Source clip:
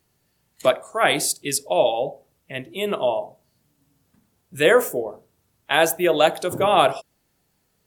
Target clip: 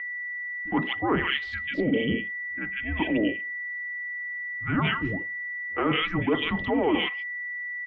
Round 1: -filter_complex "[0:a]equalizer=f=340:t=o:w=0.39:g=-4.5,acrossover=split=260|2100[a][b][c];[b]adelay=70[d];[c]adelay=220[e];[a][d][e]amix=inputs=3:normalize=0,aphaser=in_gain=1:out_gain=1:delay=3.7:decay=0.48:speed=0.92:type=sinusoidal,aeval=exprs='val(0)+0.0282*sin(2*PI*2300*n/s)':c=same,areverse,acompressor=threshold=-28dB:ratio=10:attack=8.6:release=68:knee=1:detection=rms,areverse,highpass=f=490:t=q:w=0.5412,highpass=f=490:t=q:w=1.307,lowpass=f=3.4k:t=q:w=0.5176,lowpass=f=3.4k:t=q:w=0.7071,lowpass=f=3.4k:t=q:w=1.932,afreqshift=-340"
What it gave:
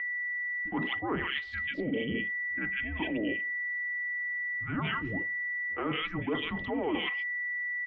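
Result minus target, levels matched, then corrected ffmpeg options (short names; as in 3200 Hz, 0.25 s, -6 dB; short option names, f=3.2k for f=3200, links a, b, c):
compressor: peak gain reduction +7.5 dB
-filter_complex "[0:a]equalizer=f=340:t=o:w=0.39:g=-4.5,acrossover=split=260|2100[a][b][c];[b]adelay=70[d];[c]adelay=220[e];[a][d][e]amix=inputs=3:normalize=0,aphaser=in_gain=1:out_gain=1:delay=3.7:decay=0.48:speed=0.92:type=sinusoidal,aeval=exprs='val(0)+0.0282*sin(2*PI*2300*n/s)':c=same,areverse,acompressor=threshold=-19.5dB:ratio=10:attack=8.6:release=68:knee=1:detection=rms,areverse,highpass=f=490:t=q:w=0.5412,highpass=f=490:t=q:w=1.307,lowpass=f=3.4k:t=q:w=0.5176,lowpass=f=3.4k:t=q:w=0.7071,lowpass=f=3.4k:t=q:w=1.932,afreqshift=-340"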